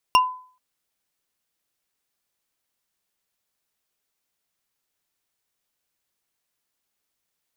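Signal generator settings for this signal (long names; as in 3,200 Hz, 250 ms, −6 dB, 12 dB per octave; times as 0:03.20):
struck wood bar, length 0.43 s, lowest mode 1,010 Hz, decay 0.46 s, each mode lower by 4 dB, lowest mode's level −10 dB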